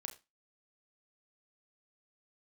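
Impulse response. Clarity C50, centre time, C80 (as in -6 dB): 15.0 dB, 13 ms, 19.5 dB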